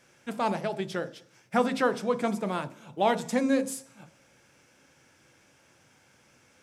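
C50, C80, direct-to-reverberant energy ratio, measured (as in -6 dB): 17.0 dB, 21.0 dB, 11.5 dB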